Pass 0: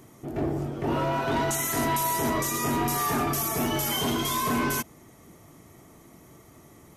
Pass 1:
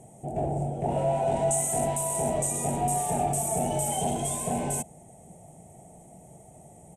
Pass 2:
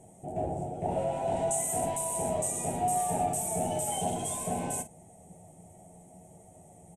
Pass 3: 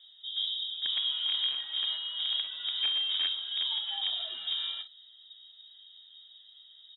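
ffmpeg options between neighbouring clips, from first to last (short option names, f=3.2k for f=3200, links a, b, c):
-af "asoftclip=type=hard:threshold=-26dB,firequalizer=gain_entry='entry(110,0);entry(170,6);entry(290,-8);entry(500,3);entry(770,11);entry(1100,-19);entry(2600,-8);entry(4800,-18);entry(8300,12);entry(15000,-28)':delay=0.05:min_phase=1"
-af "aecho=1:1:11|51:0.562|0.224,volume=-4.5dB"
-filter_complex "[0:a]asplit=2[a][b];[b]aeval=exprs='(mod(11.9*val(0)+1,2)-1)/11.9':c=same,volume=-5dB[c];[a][c]amix=inputs=2:normalize=0,lowpass=f=3.3k:t=q:w=0.5098,lowpass=f=3.3k:t=q:w=0.6013,lowpass=f=3.3k:t=q:w=0.9,lowpass=f=3.3k:t=q:w=2.563,afreqshift=-3900,volume=-4.5dB"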